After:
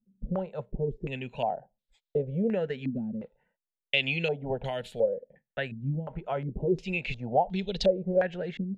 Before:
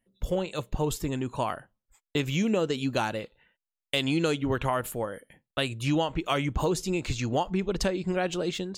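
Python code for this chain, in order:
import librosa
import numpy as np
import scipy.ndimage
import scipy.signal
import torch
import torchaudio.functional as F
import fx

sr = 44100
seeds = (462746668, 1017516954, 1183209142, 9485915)

y = fx.fixed_phaser(x, sr, hz=310.0, stages=6)
y = fx.filter_held_lowpass(y, sr, hz=2.8, low_hz=240.0, high_hz=3800.0)
y = y * librosa.db_to_amplitude(-2.5)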